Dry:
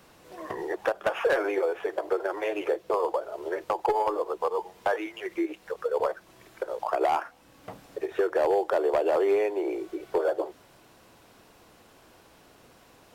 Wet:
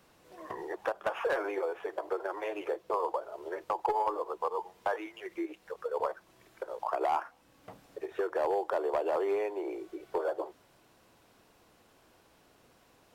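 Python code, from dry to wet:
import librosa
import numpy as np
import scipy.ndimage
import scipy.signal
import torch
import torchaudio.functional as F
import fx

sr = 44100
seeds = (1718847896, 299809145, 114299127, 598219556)

y = fx.dynamic_eq(x, sr, hz=1000.0, q=1.9, threshold_db=-42.0, ratio=4.0, max_db=6)
y = y * librosa.db_to_amplitude(-7.5)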